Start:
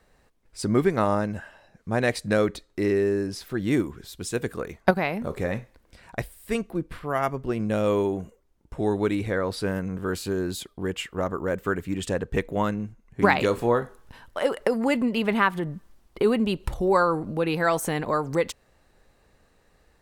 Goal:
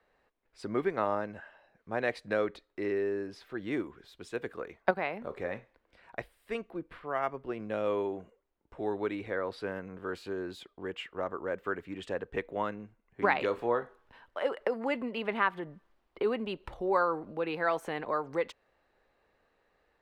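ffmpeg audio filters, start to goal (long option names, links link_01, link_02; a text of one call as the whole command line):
ffmpeg -i in.wav -filter_complex "[0:a]acrossover=split=310 3800:gain=0.251 1 0.126[link_01][link_02][link_03];[link_01][link_02][link_03]amix=inputs=3:normalize=0,volume=-6dB" out.wav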